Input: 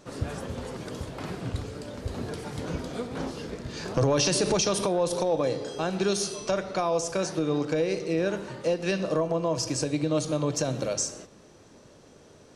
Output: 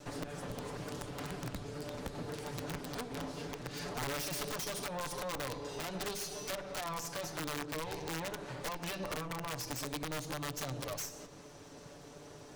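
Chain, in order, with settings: minimum comb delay 6.9 ms; compressor 3:1, threshold -43 dBFS, peak gain reduction 16.5 dB; wrapped overs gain 34 dB; gain +2.5 dB

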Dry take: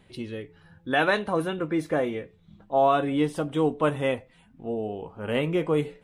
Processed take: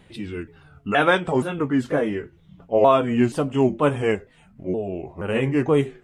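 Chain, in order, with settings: repeated pitch sweeps -4.5 st, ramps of 0.474 s; gain +5.5 dB

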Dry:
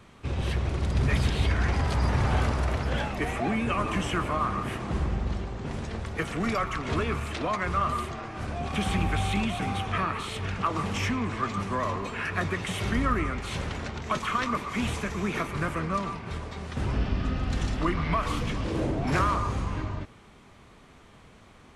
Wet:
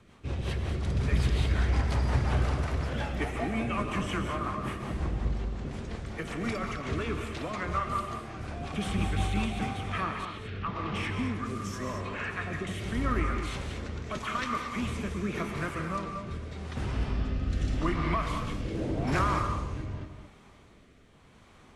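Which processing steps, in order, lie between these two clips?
rotary speaker horn 5.5 Hz, later 0.85 Hz, at 9.27; 10.25–12.67 three bands offset in time mids, lows, highs 90/700 ms, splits 760/4700 Hz; non-linear reverb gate 0.25 s rising, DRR 5.5 dB; gain -2.5 dB

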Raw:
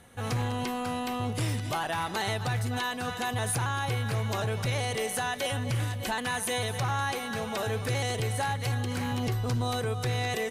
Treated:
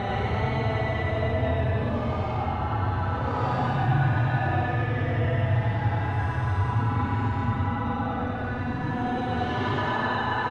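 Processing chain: bouncing-ball echo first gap 0.66 s, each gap 0.65×, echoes 5; Paulstretch 18×, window 0.05 s, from 2.27; in parallel at -11.5 dB: Schmitt trigger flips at -28.5 dBFS; on the sum: LPF 1900 Hz 12 dB/oct; echo 95 ms -3.5 dB

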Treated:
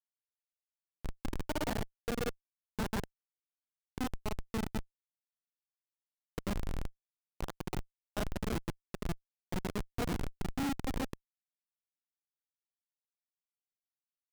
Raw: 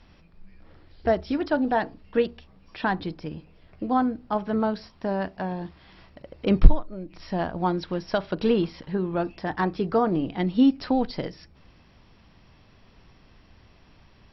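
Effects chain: local time reversal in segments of 36 ms; grains 0.189 s, grains 15/s, spray 0.1 s; Schmitt trigger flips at -23 dBFS; gain -3.5 dB

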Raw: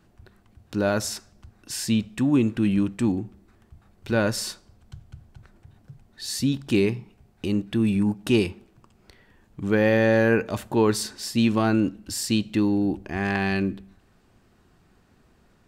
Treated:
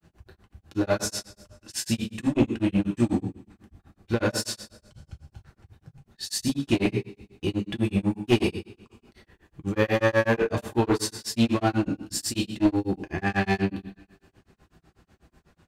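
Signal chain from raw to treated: two-slope reverb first 0.52 s, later 2 s, from -24 dB, DRR -1 dB; one-sided clip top -18 dBFS; grains 0.125 s, grains 8.1/s, spray 26 ms, pitch spread up and down by 0 st

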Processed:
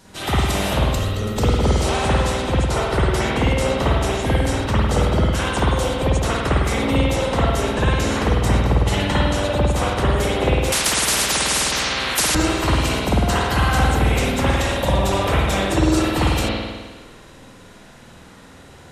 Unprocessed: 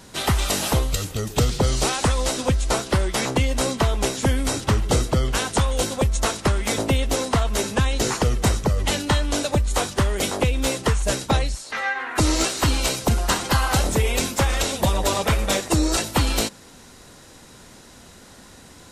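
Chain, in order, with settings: spring tank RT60 1.4 s, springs 51 ms, chirp 70 ms, DRR -8 dB; 10.72–12.35 spectral compressor 10:1; gain -5 dB

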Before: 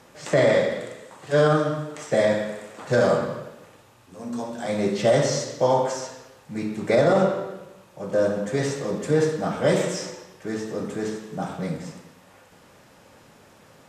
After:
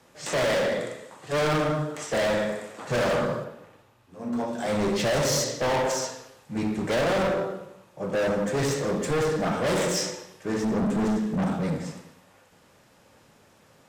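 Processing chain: 10.63–11.58 bell 210 Hz +13 dB 0.65 oct; hard clip -26.5 dBFS, distortion -4 dB; 3.44–4.48 bell 8000 Hz -6 dB 1.5 oct; three-band expander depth 40%; gain +4 dB

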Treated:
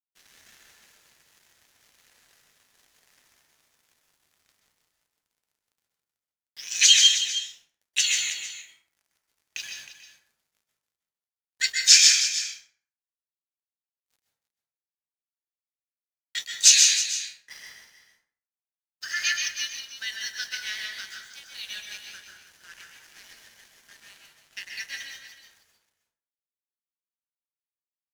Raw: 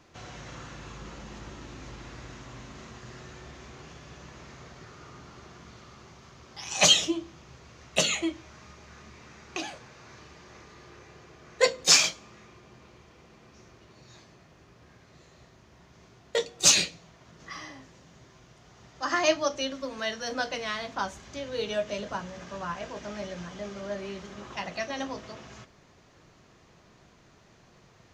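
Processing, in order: elliptic high-pass 1600 Hz, stop band 40 dB; bell 6100 Hz +3.5 dB 1.1 oct; crossover distortion -47 dBFS; echo 0.315 s -12 dB; plate-style reverb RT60 0.52 s, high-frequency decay 0.65×, pre-delay 0.115 s, DRR 1.5 dB; gain +2 dB

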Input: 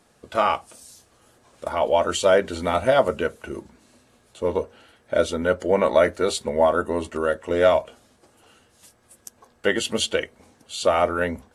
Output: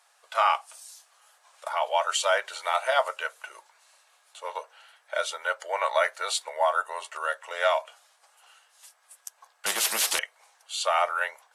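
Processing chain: inverse Chebyshev high-pass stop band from 290 Hz, stop band 50 dB; 9.66–10.19 spectral compressor 10:1

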